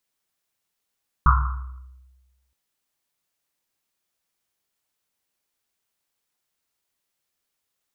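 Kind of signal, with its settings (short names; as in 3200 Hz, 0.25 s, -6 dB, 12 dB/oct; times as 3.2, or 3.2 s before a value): Risset drum length 1.27 s, pitch 64 Hz, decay 1.33 s, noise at 1200 Hz, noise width 410 Hz, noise 35%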